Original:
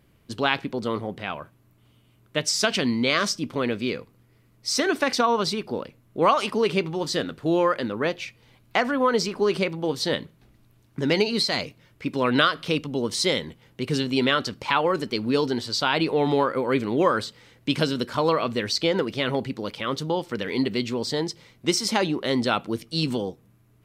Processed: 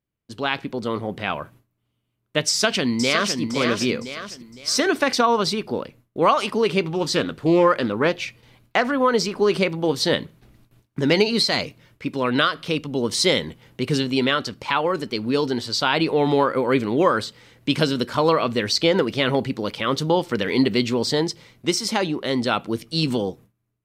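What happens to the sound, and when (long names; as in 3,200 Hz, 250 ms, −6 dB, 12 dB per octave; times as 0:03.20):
0:02.48–0:03.40: delay throw 510 ms, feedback 35%, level −6.5 dB
0:06.88–0:08.92: highs frequency-modulated by the lows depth 0.17 ms
whole clip: noise gate with hold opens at −47 dBFS; automatic gain control; level −4 dB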